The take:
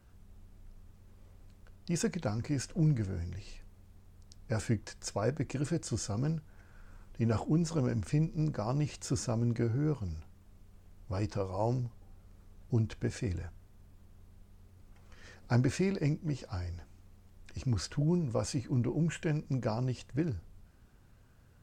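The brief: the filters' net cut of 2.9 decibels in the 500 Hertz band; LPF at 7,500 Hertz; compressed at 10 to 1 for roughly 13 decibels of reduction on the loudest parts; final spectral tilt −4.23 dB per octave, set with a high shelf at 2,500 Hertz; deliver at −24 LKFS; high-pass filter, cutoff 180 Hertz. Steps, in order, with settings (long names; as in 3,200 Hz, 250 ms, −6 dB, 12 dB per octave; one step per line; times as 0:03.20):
high-pass filter 180 Hz
low-pass filter 7,500 Hz
parametric band 500 Hz −4 dB
high-shelf EQ 2,500 Hz +8 dB
downward compressor 10 to 1, threshold −41 dBFS
level +22.5 dB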